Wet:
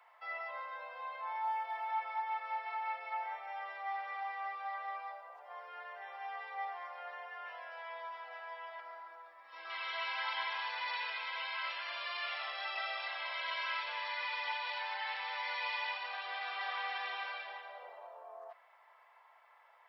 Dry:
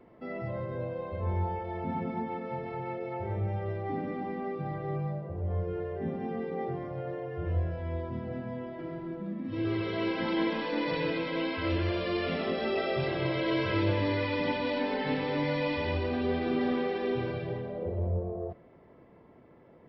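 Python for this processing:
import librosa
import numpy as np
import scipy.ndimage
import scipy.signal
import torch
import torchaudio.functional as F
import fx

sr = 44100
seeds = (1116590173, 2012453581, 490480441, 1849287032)

y = scipy.signal.sosfilt(scipy.signal.butter(6, 820.0, 'highpass', fs=sr, output='sos'), x)
y = fx.rider(y, sr, range_db=3, speed_s=2.0)
y = fx.quant_float(y, sr, bits=6, at=(1.44, 1.9))
y = fx.peak_eq(y, sr, hz=3000.0, db=-9.0, octaves=1.2, at=(8.8, 9.7))
y = F.gain(torch.from_numpy(y), 1.0).numpy()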